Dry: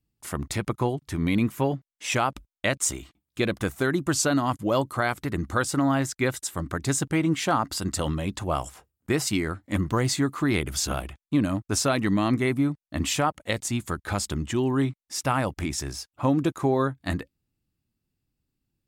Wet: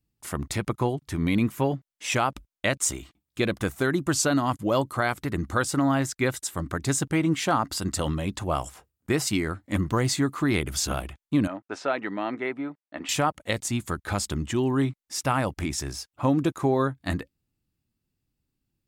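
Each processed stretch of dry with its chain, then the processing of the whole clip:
0:11.47–0:13.09: band-pass filter 440–2,200 Hz + notch filter 1,100 Hz, Q 7.4
whole clip: no processing

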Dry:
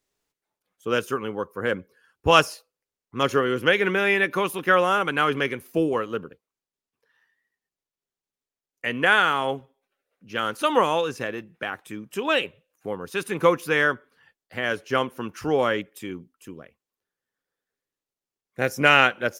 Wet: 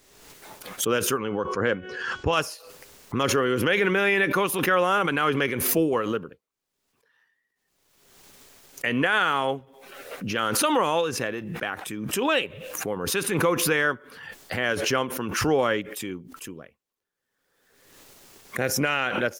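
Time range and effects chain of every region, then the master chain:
0:01.18–0:02.33: Butterworth low-pass 7,000 Hz + hum removal 369.8 Hz, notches 10
whole clip: brickwall limiter −12 dBFS; background raised ahead of every attack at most 42 dB per second

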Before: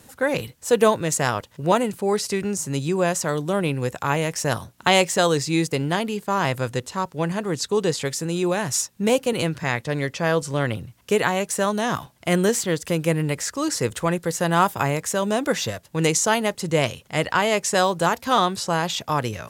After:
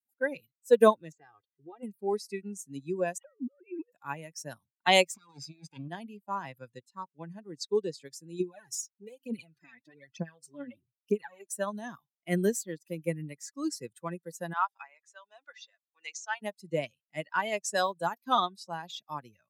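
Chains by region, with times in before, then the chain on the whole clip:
0:01.12–0:01.83: comb filter 2.5 ms, depth 73% + downward compressor 2.5 to 1, threshold −26 dBFS + high-frequency loss of the air 150 metres
0:03.18–0:03.92: three sine waves on the formant tracks + compressor whose output falls as the input rises −28 dBFS, ratio −0.5
0:05.14–0:05.88: lower of the sound and its delayed copy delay 0.81 ms + low-pass filter 7,900 Hz + compressor whose output falls as the input rises −25 dBFS, ratio −0.5
0:08.40–0:11.49: downward compressor 10 to 1, threshold −23 dBFS + phase shifter 1.1 Hz, delay 4.1 ms, feedback 65%
0:14.53–0:16.42: high-pass filter 880 Hz + high-frequency loss of the air 82 metres
whole clip: spectral dynamics exaggerated over time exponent 2; high-pass filter 170 Hz 24 dB per octave; expander for the loud parts 1.5 to 1, over −42 dBFS

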